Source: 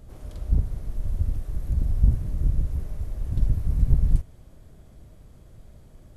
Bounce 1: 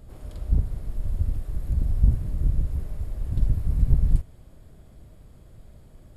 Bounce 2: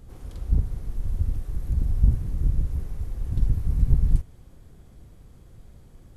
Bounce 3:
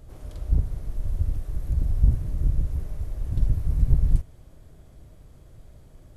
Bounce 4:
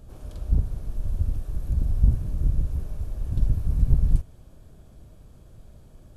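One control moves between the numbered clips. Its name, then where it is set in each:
notch, frequency: 6000, 620, 210, 2000 Hz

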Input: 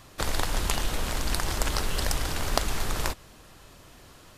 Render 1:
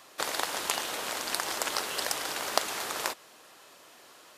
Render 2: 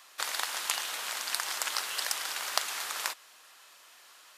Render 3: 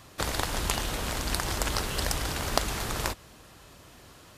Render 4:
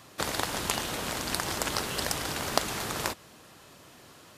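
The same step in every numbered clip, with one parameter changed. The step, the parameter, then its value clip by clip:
HPF, cutoff: 430, 1100, 45, 130 Hz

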